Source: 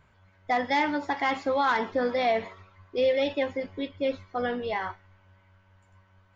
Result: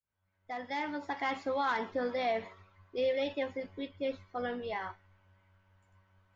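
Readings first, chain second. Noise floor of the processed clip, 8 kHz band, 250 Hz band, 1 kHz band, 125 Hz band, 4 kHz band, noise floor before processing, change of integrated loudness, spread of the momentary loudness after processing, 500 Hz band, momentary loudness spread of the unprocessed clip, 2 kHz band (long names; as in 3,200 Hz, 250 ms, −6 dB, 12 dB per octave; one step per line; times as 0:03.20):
−79 dBFS, can't be measured, −8.0 dB, −8.0 dB, −7.0 dB, −7.5 dB, −62 dBFS, −7.5 dB, 11 LU, −7.0 dB, 9 LU, −8.0 dB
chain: fade in at the beginning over 1.23 s
level −7 dB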